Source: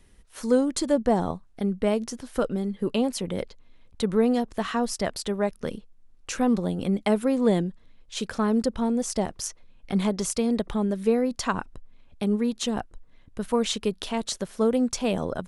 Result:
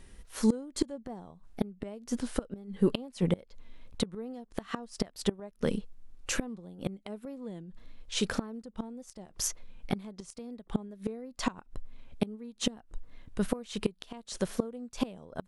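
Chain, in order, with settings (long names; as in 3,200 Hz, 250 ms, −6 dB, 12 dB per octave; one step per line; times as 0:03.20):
tape wow and flutter 57 cents
harmonic and percussive parts rebalanced harmonic +6 dB
gate with flip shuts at −14 dBFS, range −25 dB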